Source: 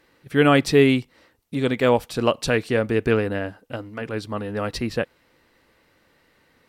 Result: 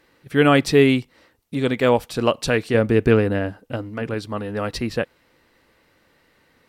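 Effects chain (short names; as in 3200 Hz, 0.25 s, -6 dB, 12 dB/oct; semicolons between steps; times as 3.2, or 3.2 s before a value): 2.74–4.14 low shelf 440 Hz +5.5 dB; gain +1 dB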